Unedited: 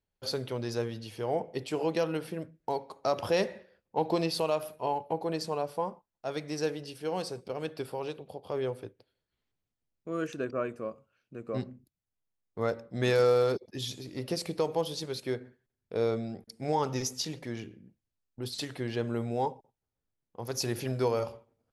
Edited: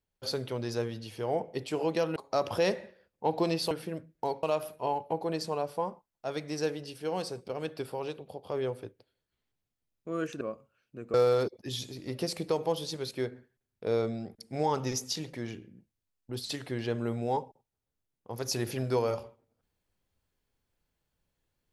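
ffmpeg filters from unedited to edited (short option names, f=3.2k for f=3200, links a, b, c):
-filter_complex "[0:a]asplit=6[a][b][c][d][e][f];[a]atrim=end=2.162[g];[b]atrim=start=2.878:end=4.432[h];[c]atrim=start=2.158:end=2.882[i];[d]atrim=start=4.428:end=10.412[j];[e]atrim=start=10.788:end=11.522[k];[f]atrim=start=13.228[l];[g][h]acrossfade=d=0.004:c1=hsin:c2=hsin[m];[m][i]acrossfade=d=0.004:c1=hsin:c2=hsin[n];[n][j]acrossfade=d=0.004:c1=hsin:c2=hsin[o];[o][k]acrossfade=d=0.004:c1=hsin:c2=hsin[p];[p][l]acrossfade=d=0.004:c1=hsin:c2=hsin"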